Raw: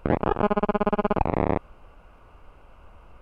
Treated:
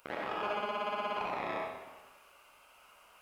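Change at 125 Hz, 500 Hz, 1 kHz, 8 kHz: −26.0 dB, −13.0 dB, −8.5 dB, can't be measured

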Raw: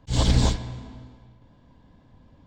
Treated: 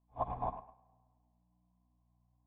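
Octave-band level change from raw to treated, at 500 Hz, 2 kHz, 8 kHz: −10.0 dB, below −25 dB, below −40 dB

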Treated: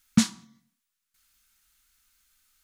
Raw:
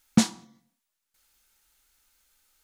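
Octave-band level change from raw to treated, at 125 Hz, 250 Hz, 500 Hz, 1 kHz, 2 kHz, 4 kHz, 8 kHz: 0.0, −0.5, −10.5, −5.0, 0.0, 0.0, 0.0 decibels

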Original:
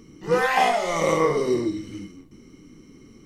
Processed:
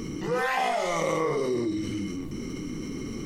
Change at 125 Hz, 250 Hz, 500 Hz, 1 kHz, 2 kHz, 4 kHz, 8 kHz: −0.5, −1.0, −5.0, −6.0, −4.5, −4.0, −3.0 decibels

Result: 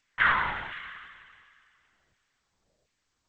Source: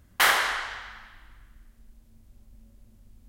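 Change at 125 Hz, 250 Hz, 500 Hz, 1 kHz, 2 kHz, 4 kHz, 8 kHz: +4.5 dB, +0.5 dB, −8.0 dB, −1.5 dB, −1.5 dB, −11.0 dB, below −35 dB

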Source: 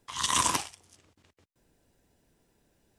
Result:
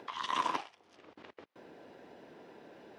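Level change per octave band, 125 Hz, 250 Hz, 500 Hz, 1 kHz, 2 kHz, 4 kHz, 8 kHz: −15.5, −5.0, −0.5, −3.0, −6.0, −10.5, −25.0 decibels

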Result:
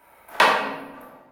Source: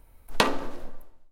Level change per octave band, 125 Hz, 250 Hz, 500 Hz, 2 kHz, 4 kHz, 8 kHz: −5.0, −1.5, +4.5, +10.0, +4.0, 0.0 decibels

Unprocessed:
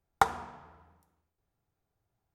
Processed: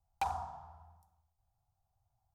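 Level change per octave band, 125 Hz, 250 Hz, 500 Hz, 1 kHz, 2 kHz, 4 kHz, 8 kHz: −3.5, −13.5, −11.0, −7.5, −13.0, −9.5, −10.0 decibels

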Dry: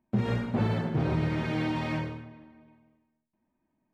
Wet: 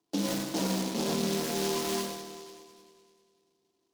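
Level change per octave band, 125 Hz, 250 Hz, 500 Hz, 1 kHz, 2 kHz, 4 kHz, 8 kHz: −11.0 dB, −2.0 dB, +2.5 dB, −0.5 dB, −3.5 dB, +9.5 dB, can't be measured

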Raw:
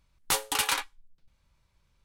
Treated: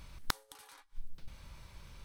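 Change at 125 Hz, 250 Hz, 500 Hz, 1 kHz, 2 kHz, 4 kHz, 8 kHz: +1.5, −7.5, −15.5, −13.5, −13.5, −14.0, −19.5 decibels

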